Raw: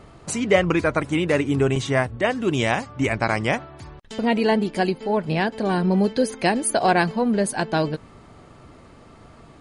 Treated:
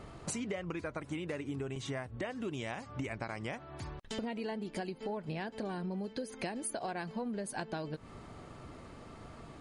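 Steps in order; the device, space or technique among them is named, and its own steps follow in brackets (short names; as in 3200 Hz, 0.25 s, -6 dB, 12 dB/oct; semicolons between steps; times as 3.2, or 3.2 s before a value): serial compression, leveller first (compressor 1.5:1, threshold -28 dBFS, peak gain reduction 6 dB; compressor 10:1, threshold -32 dBFS, peak gain reduction 15.5 dB); gain -3 dB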